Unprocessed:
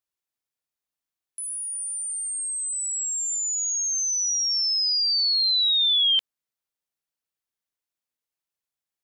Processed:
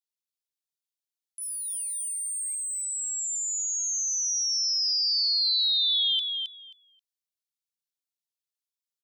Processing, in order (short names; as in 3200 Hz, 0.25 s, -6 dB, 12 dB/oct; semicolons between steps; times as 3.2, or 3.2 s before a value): 1.41–2.55 sample leveller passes 2; ladder high-pass 2600 Hz, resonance 20%; feedback echo 0.267 s, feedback 16%, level -5 dB